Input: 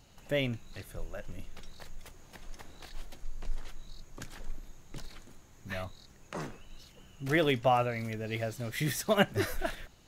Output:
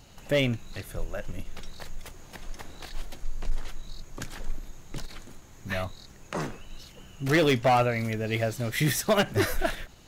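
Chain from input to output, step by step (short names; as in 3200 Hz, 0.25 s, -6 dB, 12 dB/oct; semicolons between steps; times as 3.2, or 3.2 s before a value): overloaded stage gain 24 dB; ending taper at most 330 dB/s; gain +7 dB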